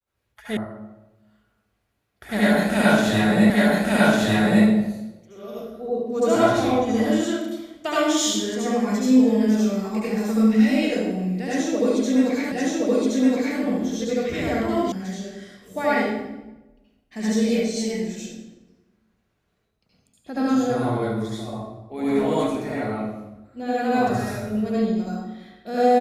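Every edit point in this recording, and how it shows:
0.57 sound cut off
3.5 repeat of the last 1.15 s
12.52 repeat of the last 1.07 s
14.92 sound cut off

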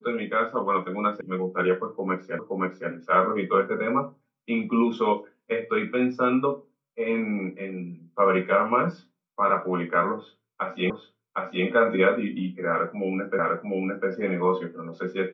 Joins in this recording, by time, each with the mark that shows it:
1.21 sound cut off
2.39 repeat of the last 0.52 s
10.9 repeat of the last 0.76 s
13.39 repeat of the last 0.7 s

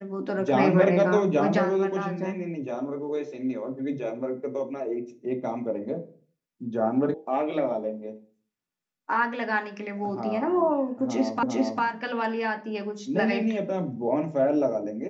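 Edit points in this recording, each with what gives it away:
7.14 sound cut off
11.43 repeat of the last 0.4 s

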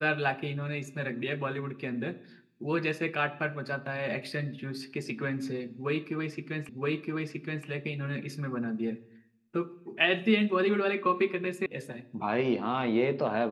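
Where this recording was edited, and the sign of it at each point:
6.69 repeat of the last 0.97 s
11.66 sound cut off

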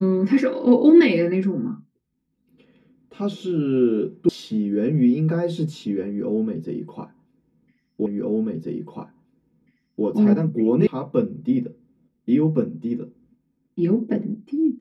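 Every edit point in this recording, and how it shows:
4.29 sound cut off
8.06 repeat of the last 1.99 s
10.87 sound cut off

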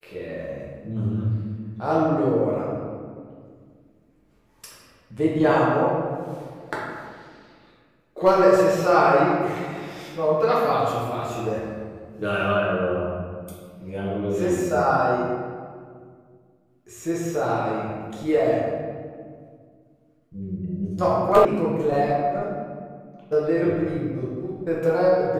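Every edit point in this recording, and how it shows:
21.45 sound cut off

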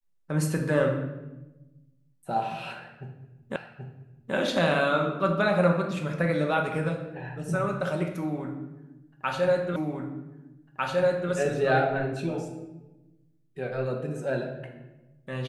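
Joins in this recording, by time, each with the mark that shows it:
3.56 repeat of the last 0.78 s
9.76 repeat of the last 1.55 s

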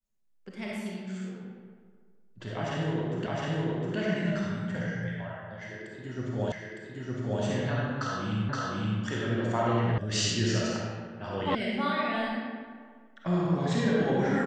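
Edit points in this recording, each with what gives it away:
3.26 repeat of the last 0.71 s
6.52 repeat of the last 0.91 s
8.49 repeat of the last 0.52 s
9.98 sound cut off
11.55 sound cut off

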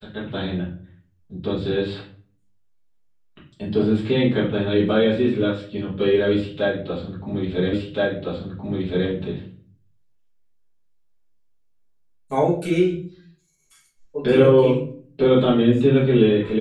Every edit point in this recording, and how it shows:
7.73 repeat of the last 1.37 s

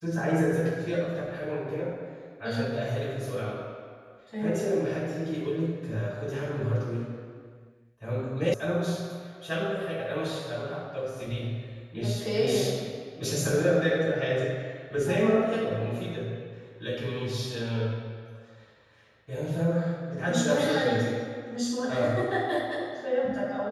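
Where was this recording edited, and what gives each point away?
8.54 sound cut off

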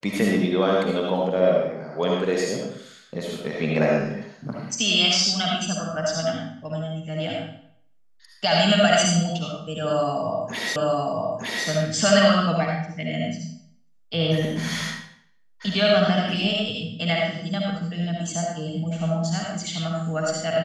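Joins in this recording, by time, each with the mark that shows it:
10.76 repeat of the last 0.91 s

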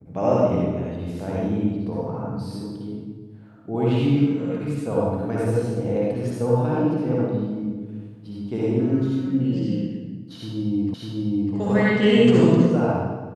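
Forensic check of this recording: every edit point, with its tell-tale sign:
10.94 repeat of the last 0.6 s

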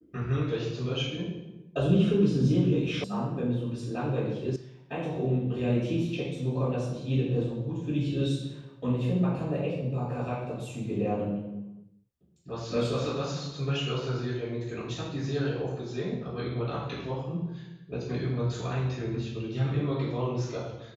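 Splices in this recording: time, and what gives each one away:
3.04 sound cut off
4.56 sound cut off

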